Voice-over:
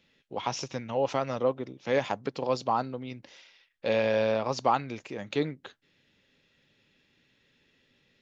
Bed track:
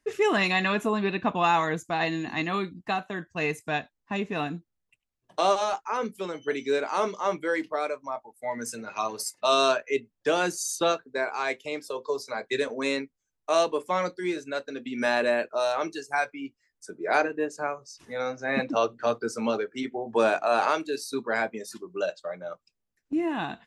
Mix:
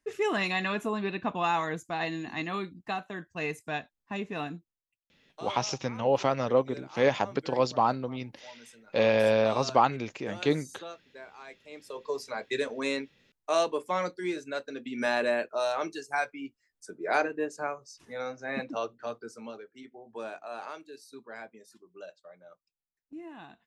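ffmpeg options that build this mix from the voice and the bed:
-filter_complex "[0:a]adelay=5100,volume=2.5dB[a];[1:a]volume=10.5dB,afade=t=out:st=4.51:d=0.31:silence=0.211349,afade=t=in:st=11.64:d=0.53:silence=0.16788,afade=t=out:st=17.67:d=1.89:silence=0.211349[b];[a][b]amix=inputs=2:normalize=0"

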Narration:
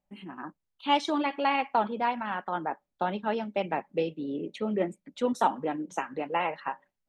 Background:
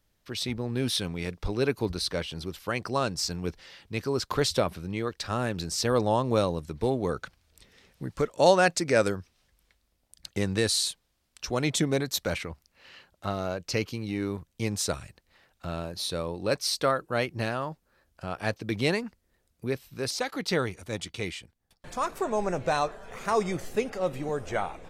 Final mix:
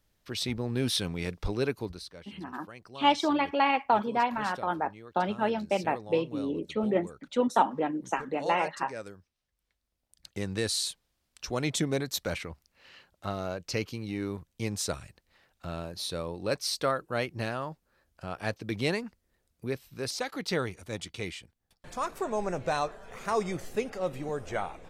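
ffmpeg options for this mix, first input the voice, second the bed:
-filter_complex "[0:a]adelay=2150,volume=1.5dB[a];[1:a]volume=14dB,afade=t=out:st=1.46:d=0.64:silence=0.141254,afade=t=in:st=9.46:d=1.48:silence=0.188365[b];[a][b]amix=inputs=2:normalize=0"

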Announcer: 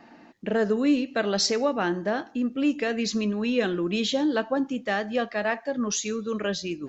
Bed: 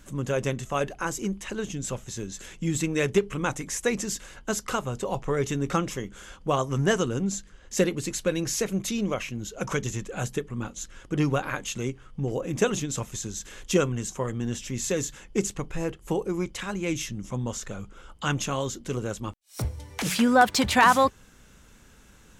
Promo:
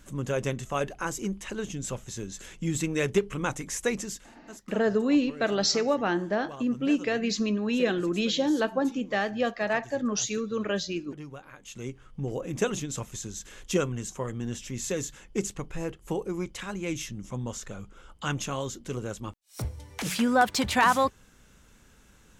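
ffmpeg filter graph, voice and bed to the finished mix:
-filter_complex "[0:a]adelay=4250,volume=-1dB[a];[1:a]volume=12.5dB,afade=t=out:st=3.89:d=0.51:silence=0.158489,afade=t=in:st=11.58:d=0.44:silence=0.188365[b];[a][b]amix=inputs=2:normalize=0"

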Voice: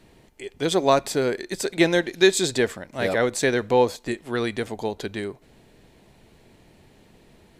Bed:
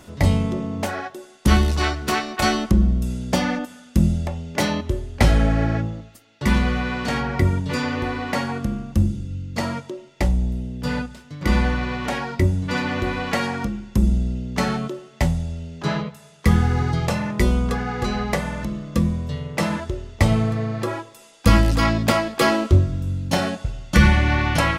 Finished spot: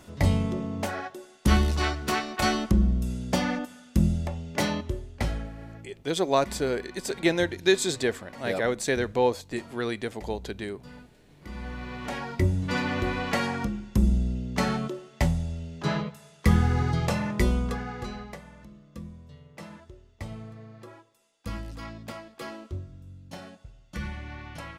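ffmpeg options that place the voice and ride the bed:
-filter_complex "[0:a]adelay=5450,volume=-4.5dB[a];[1:a]volume=13dB,afade=t=out:st=4.66:d=0.85:silence=0.141254,afade=t=in:st=11.53:d=1.07:silence=0.125893,afade=t=out:st=17.31:d=1.08:silence=0.141254[b];[a][b]amix=inputs=2:normalize=0"

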